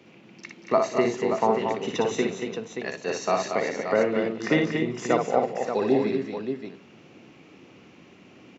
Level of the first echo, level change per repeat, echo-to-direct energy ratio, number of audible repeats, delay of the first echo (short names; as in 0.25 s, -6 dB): -4.5 dB, no steady repeat, -1.0 dB, 5, 59 ms